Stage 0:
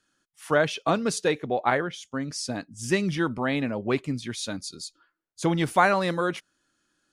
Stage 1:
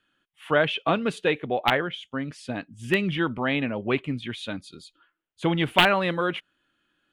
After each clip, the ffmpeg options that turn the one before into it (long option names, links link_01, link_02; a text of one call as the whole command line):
ffmpeg -i in.wav -af "aeval=exprs='(mod(2.99*val(0)+1,2)-1)/2.99':channel_layout=same,highshelf=frequency=4100:width_type=q:width=3:gain=-10.5" out.wav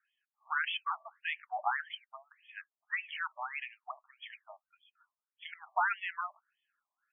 ffmpeg -i in.wav -af "afftfilt=real='re*between(b*sr/1024,830*pow(2500/830,0.5+0.5*sin(2*PI*1.7*pts/sr))/1.41,830*pow(2500/830,0.5+0.5*sin(2*PI*1.7*pts/sr))*1.41)':imag='im*between(b*sr/1024,830*pow(2500/830,0.5+0.5*sin(2*PI*1.7*pts/sr))/1.41,830*pow(2500/830,0.5+0.5*sin(2*PI*1.7*pts/sr))*1.41)':win_size=1024:overlap=0.75,volume=-6.5dB" out.wav